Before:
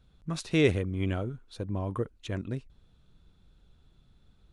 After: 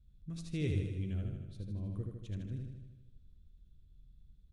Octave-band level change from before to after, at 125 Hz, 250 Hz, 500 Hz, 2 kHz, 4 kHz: −4.5, −9.5, −16.0, −16.5, −14.5 decibels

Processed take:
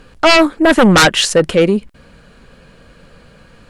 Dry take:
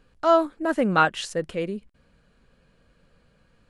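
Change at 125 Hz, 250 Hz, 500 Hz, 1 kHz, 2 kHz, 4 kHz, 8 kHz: +15.0, +14.5, +11.5, +8.0, +14.0, +20.5, +21.5 decibels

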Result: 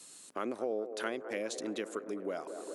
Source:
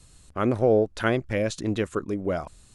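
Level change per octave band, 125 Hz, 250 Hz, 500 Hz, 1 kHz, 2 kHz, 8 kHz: below −25 dB, −13.0 dB, −12.0 dB, −10.5 dB, −10.5 dB, −3.0 dB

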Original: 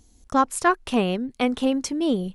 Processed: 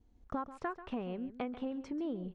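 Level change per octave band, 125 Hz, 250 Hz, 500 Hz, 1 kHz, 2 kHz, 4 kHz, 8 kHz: −14.5 dB, −15.0 dB, −16.0 dB, −18.5 dB, −20.0 dB, −24.0 dB, below −35 dB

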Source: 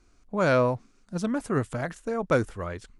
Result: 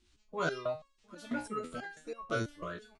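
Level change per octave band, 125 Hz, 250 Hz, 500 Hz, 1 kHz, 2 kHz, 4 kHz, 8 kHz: −14.0, −12.0, −12.0, −9.0, −6.5, −4.0, −7.0 decibels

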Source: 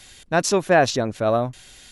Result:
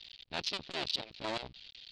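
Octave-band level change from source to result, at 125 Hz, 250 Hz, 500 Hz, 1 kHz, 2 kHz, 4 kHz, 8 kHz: −24.5, −21.5, −24.5, −20.5, −17.5, −4.5, −22.5 decibels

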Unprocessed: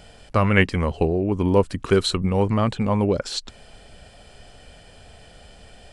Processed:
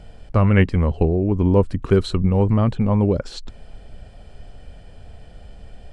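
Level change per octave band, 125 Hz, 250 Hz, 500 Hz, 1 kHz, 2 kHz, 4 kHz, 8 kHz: +5.5 dB, +3.0 dB, +0.5 dB, −2.5 dB, −5.0 dB, −7.5 dB, can't be measured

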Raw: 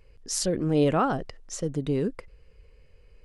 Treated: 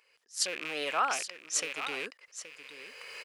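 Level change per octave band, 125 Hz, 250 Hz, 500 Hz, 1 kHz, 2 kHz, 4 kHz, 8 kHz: −32.5, −22.0, −13.0, −2.5, +6.5, +2.5, +0.5 decibels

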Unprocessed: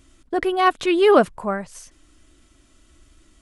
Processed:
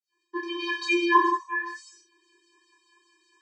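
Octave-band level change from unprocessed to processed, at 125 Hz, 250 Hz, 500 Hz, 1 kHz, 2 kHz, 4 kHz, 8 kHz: below −35 dB, −6.5 dB, −14.5 dB, −3.0 dB, +0.5 dB, −3.0 dB, −5.5 dB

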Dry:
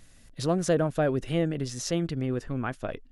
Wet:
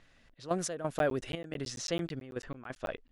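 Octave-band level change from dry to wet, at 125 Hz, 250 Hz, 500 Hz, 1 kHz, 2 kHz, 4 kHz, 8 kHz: −12.0, −9.5, −7.0, −3.5, −3.5, −3.0, −3.5 decibels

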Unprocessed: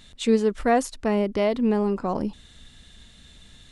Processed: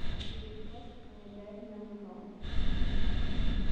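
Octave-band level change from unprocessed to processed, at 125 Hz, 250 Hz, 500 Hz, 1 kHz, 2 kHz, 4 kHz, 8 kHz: −2.0 dB, −17.0 dB, −23.5 dB, −23.0 dB, −12.5 dB, −5.5 dB, below −20 dB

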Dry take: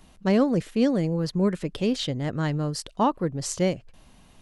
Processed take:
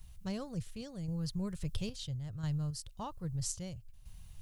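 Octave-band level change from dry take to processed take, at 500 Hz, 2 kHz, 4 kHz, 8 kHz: −21.5, −18.5, −12.0, −7.0 decibels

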